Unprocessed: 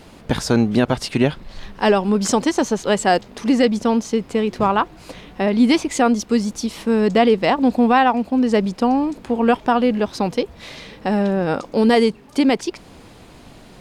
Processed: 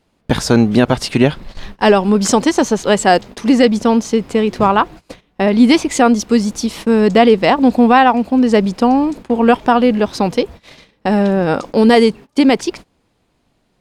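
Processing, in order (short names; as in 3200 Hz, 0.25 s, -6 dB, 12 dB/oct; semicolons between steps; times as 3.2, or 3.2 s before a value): gate -34 dBFS, range -24 dB; gain +5 dB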